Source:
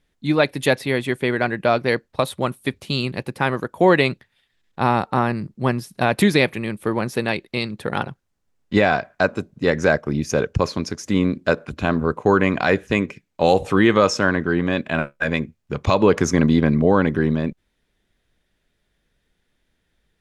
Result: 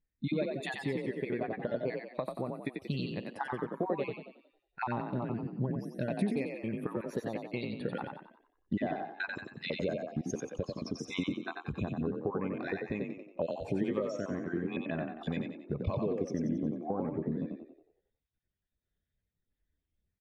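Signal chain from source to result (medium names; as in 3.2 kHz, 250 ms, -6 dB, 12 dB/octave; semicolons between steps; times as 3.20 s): random holes in the spectrogram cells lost 37%; dynamic bell 1.5 kHz, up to -6 dB, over -37 dBFS, Q 3.6; compression 12:1, threshold -32 dBFS, peak gain reduction 22 dB; frequency-shifting echo 91 ms, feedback 56%, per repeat +36 Hz, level -3 dB; spectral contrast expander 1.5:1; trim -1 dB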